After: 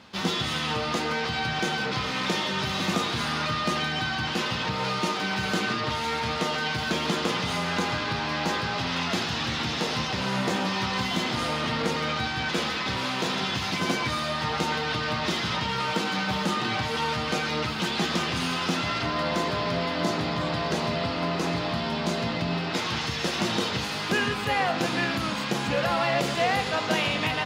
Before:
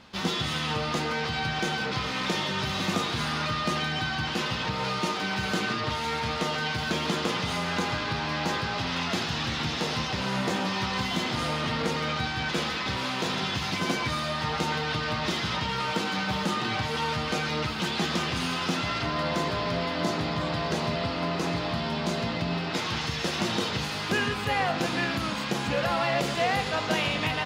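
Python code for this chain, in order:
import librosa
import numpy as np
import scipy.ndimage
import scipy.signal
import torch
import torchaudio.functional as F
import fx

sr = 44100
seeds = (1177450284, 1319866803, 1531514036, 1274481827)

y = scipy.signal.sosfilt(scipy.signal.butter(2, 69.0, 'highpass', fs=sr, output='sos'), x)
y = fx.hum_notches(y, sr, base_hz=50, count=3)
y = F.gain(torch.from_numpy(y), 1.5).numpy()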